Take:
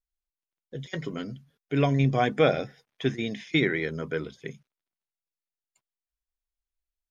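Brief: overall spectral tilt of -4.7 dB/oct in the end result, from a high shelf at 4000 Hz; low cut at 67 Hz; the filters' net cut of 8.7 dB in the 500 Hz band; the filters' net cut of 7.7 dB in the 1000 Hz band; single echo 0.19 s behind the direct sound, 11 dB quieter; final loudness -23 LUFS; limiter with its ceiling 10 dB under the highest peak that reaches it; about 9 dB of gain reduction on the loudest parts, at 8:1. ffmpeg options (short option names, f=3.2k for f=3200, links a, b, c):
-af "highpass=67,equalizer=f=500:t=o:g=-9,equalizer=f=1k:t=o:g=-8,highshelf=f=4k:g=8,acompressor=threshold=-29dB:ratio=8,alimiter=level_in=3dB:limit=-24dB:level=0:latency=1,volume=-3dB,aecho=1:1:190:0.282,volume=16dB"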